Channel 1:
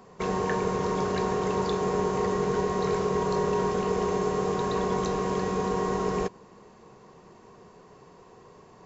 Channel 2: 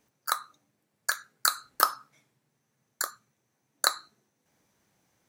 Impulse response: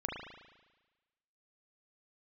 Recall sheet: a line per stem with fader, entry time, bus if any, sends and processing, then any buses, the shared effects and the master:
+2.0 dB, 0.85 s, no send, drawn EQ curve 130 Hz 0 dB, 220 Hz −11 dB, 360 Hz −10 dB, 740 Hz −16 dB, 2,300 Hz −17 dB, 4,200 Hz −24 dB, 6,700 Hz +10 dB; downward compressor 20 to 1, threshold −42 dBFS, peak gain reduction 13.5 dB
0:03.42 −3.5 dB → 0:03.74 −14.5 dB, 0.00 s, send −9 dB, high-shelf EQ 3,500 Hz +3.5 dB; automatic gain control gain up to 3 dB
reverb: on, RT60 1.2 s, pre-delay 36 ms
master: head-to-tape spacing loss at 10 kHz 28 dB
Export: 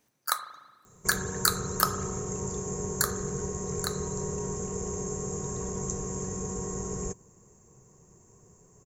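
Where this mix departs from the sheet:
stem 1: missing downward compressor 20 to 1, threshold −42 dBFS, peak gain reduction 13.5 dB
master: missing head-to-tape spacing loss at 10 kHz 28 dB

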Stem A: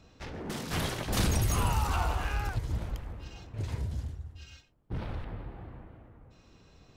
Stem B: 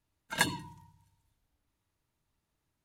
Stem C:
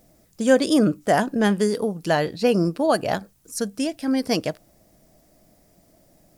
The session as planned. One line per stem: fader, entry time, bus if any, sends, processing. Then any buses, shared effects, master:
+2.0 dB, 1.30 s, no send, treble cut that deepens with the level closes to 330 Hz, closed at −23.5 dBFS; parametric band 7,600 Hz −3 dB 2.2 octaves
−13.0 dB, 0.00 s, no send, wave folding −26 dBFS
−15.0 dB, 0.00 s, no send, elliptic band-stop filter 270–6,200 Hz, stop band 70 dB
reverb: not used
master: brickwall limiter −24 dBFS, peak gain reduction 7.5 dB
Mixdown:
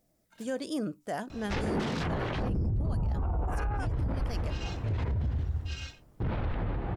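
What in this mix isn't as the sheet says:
stem A +2.0 dB → +12.0 dB
stem B −13.0 dB → −23.5 dB
stem C: missing elliptic band-stop filter 270–6,200 Hz, stop band 70 dB

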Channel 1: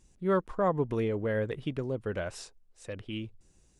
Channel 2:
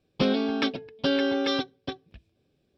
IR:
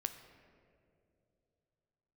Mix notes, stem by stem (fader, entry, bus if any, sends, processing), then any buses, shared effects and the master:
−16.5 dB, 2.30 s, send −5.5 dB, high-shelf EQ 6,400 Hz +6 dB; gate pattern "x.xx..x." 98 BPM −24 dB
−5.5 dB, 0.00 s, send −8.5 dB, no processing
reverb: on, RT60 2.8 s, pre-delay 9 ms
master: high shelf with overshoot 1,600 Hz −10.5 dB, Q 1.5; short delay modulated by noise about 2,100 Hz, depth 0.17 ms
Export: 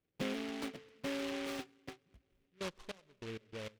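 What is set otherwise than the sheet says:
stem 2 −5.5 dB → −15.5 dB
reverb return −8.5 dB

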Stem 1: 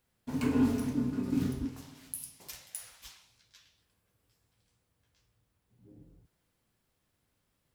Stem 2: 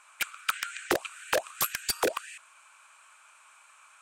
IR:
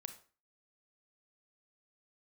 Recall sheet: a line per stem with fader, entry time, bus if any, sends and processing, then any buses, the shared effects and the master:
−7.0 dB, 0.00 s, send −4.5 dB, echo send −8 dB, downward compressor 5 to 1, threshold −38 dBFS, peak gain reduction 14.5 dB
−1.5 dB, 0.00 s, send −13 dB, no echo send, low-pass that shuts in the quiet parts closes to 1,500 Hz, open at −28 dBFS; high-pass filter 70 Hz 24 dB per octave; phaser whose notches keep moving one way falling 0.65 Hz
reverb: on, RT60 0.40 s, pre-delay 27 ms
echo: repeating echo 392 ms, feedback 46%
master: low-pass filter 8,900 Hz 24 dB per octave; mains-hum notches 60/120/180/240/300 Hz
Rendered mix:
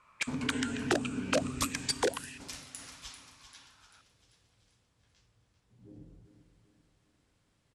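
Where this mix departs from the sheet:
stem 1 −7.0 dB → +1.5 dB
master: missing mains-hum notches 60/120/180/240/300 Hz

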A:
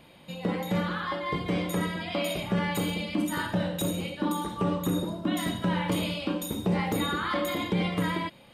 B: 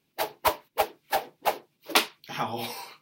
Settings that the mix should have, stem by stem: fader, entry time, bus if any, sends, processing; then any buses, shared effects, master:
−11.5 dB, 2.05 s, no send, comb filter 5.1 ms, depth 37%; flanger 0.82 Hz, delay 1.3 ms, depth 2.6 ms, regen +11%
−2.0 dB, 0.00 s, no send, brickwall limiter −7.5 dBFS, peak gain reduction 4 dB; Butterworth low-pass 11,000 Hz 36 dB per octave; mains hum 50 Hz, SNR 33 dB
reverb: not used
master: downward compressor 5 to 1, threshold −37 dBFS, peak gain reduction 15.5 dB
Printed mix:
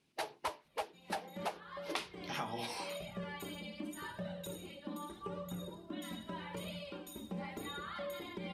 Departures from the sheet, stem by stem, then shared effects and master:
stem A: entry 2.05 s → 0.65 s
stem B: missing mains hum 50 Hz, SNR 33 dB

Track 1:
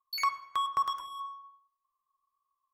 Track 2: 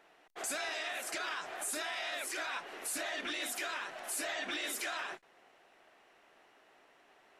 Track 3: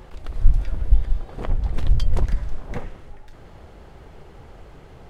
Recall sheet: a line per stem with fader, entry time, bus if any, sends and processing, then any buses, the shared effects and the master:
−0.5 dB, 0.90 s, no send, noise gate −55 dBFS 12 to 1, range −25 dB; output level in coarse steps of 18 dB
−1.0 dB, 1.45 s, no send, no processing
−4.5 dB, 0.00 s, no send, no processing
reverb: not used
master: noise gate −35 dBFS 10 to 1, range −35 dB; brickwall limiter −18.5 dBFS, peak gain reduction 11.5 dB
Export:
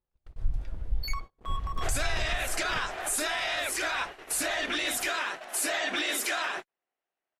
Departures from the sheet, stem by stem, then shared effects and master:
stem 2 −1.0 dB → +8.0 dB
stem 3 −4.5 dB → −11.0 dB

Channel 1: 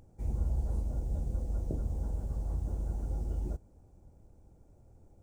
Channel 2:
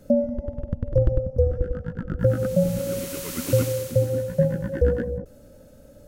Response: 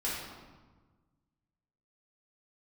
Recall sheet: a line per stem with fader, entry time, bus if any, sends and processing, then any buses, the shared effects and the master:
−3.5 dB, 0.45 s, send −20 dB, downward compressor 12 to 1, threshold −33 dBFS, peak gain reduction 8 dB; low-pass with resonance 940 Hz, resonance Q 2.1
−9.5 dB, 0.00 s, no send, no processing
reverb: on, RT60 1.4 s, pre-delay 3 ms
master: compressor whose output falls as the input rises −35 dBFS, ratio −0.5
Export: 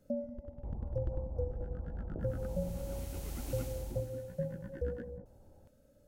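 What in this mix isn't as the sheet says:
stem 2 −9.5 dB → −16.5 dB
master: missing compressor whose output falls as the input rises −35 dBFS, ratio −0.5

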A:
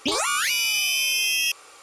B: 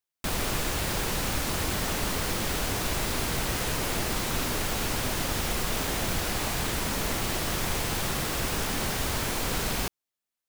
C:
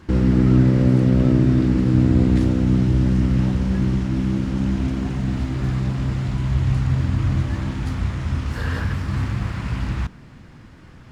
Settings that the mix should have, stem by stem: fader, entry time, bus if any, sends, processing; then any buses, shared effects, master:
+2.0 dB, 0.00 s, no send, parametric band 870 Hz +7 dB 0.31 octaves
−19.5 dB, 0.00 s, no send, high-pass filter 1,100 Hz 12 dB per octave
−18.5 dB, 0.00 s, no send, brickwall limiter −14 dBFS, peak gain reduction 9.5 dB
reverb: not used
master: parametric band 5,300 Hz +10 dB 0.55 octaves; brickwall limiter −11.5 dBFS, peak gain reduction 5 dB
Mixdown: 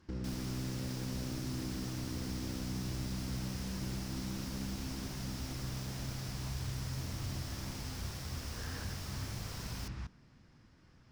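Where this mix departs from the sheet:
stem A: muted
stem B: missing high-pass filter 1,100 Hz 12 dB per octave

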